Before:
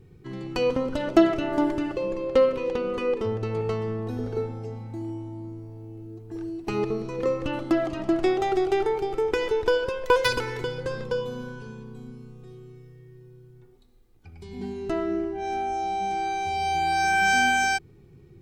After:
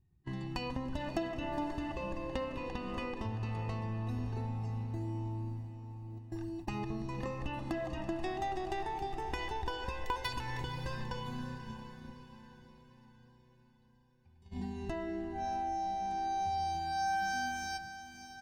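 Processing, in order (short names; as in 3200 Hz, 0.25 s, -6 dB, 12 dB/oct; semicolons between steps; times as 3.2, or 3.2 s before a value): gate -37 dBFS, range -26 dB; bell 64 Hz +11.5 dB 0.38 oct; comb 1.1 ms, depth 83%; compressor 3:1, threshold -40 dBFS, peak gain reduction 20 dB; on a send: diffused feedback echo 0.571 s, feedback 48%, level -10.5 dB; on the sum: gain +1 dB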